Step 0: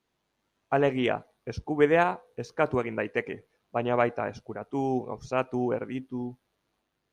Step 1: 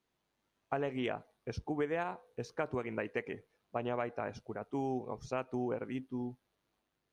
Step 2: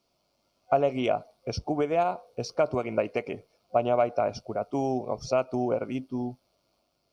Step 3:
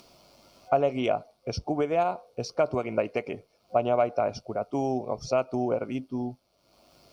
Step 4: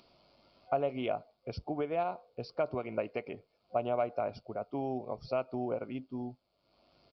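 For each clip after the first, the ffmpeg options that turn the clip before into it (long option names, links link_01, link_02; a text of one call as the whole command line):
ffmpeg -i in.wav -af "acompressor=threshold=-27dB:ratio=5,volume=-4.5dB" out.wav
ffmpeg -i in.wav -af "superequalizer=8b=2.51:11b=0.251:14b=2.82,volume=7dB" out.wav
ffmpeg -i in.wav -af "acompressor=mode=upward:threshold=-42dB:ratio=2.5" out.wav
ffmpeg -i in.wav -af "aresample=11025,aresample=44100,volume=-7.5dB" out.wav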